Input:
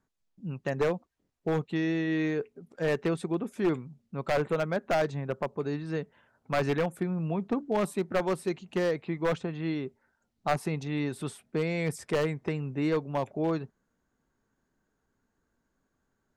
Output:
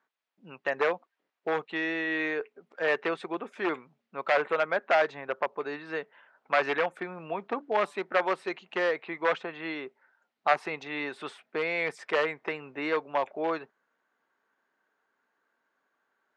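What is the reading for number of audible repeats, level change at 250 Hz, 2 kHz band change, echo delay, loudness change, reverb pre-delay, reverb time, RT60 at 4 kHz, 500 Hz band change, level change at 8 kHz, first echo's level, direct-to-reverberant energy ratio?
no echo audible, −7.5 dB, +7.5 dB, no echo audible, +0.5 dB, no reverb audible, no reverb audible, no reverb audible, 0.0 dB, can't be measured, no echo audible, no reverb audible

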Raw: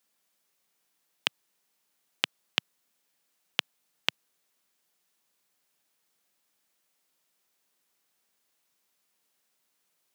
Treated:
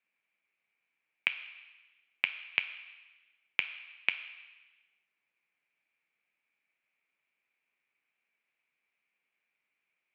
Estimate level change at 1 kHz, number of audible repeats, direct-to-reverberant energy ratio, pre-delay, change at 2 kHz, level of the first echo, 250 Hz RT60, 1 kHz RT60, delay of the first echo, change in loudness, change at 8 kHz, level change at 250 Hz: −7.5 dB, no echo audible, 8.0 dB, 3 ms, +3.5 dB, no echo audible, 1.1 s, 1.2 s, no echo audible, −1.5 dB, below −30 dB, −10.0 dB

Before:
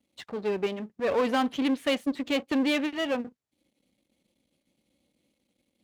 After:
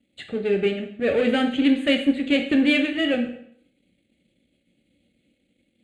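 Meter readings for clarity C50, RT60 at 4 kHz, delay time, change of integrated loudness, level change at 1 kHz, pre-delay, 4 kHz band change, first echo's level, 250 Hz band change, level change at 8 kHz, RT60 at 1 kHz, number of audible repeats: 9.0 dB, 0.60 s, no echo audible, +6.5 dB, −2.5 dB, 7 ms, +6.5 dB, no echo audible, +7.5 dB, can't be measured, 0.60 s, no echo audible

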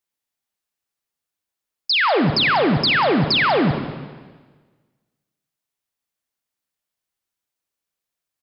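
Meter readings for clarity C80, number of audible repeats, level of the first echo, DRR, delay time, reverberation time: 8.0 dB, 1, −15.5 dB, 6.5 dB, 192 ms, 1.4 s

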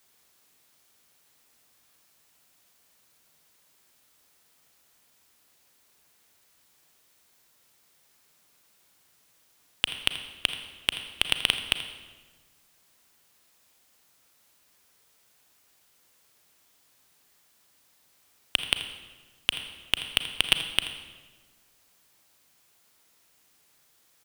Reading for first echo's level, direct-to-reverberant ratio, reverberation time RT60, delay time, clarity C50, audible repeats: −14.5 dB, 7.5 dB, 1.3 s, 82 ms, 8.5 dB, 1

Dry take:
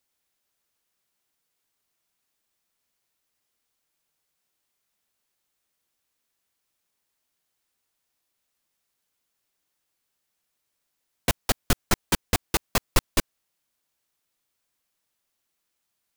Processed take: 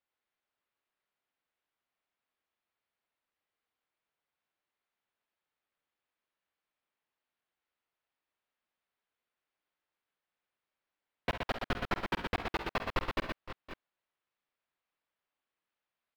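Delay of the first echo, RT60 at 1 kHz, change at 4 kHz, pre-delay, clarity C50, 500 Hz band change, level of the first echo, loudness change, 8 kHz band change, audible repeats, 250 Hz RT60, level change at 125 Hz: 49 ms, no reverb audible, −11.5 dB, no reverb audible, no reverb audible, −5.5 dB, −12.0 dB, −9.5 dB, −28.5 dB, 3, no reverb audible, −11.0 dB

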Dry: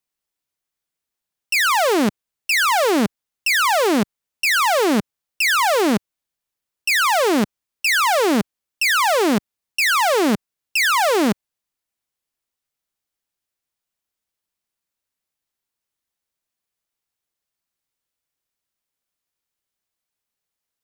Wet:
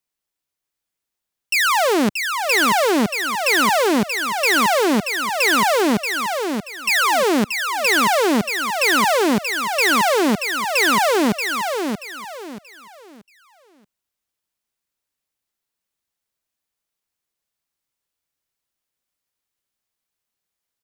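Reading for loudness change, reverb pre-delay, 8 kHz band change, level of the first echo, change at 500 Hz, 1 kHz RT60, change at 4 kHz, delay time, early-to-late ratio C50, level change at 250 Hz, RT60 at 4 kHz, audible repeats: +0.5 dB, no reverb audible, +1.0 dB, −6.0 dB, +1.0 dB, no reverb audible, +1.0 dB, 631 ms, no reverb audible, +1.0 dB, no reverb audible, 3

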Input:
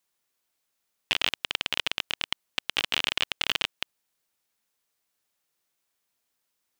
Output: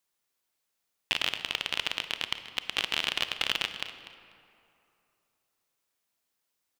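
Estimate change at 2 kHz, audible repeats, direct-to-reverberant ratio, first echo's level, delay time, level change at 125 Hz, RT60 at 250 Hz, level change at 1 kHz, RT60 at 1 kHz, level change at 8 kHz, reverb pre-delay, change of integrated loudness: −2.0 dB, 2, 9.0 dB, −14.5 dB, 245 ms, −1.5 dB, 2.7 s, −2.0 dB, 2.8 s, −2.0 dB, 28 ms, −2.5 dB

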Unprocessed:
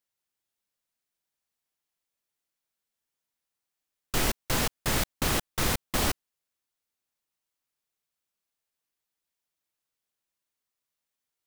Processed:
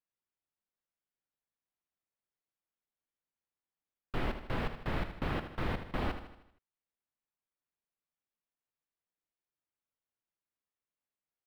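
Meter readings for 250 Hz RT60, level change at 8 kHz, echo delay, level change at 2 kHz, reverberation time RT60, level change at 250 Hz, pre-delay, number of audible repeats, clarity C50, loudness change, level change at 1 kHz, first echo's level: no reverb audible, −33.5 dB, 78 ms, −8.5 dB, no reverb audible, −5.0 dB, no reverb audible, 5, no reverb audible, −9.5 dB, −6.5 dB, −10.0 dB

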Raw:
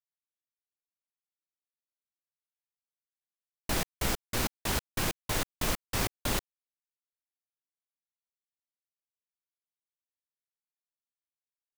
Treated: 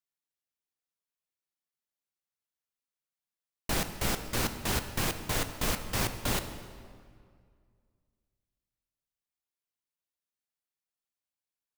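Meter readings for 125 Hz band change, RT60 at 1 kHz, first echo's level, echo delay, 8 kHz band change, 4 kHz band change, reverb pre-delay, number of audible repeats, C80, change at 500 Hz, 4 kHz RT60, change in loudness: +1.5 dB, 2.0 s, no echo audible, no echo audible, +0.5 dB, +0.5 dB, 3 ms, no echo audible, 11.0 dB, +0.5 dB, 1.5 s, +0.5 dB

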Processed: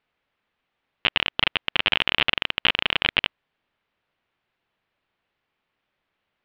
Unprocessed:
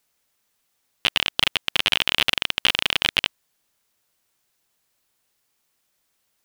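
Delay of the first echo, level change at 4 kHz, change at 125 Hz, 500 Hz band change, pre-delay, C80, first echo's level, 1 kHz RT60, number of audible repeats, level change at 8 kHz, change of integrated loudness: no echo audible, −2.5 dB, +1.0 dB, +1.0 dB, no reverb audible, no reverb audible, no echo audible, no reverb audible, no echo audible, below −25 dB, −1.5 dB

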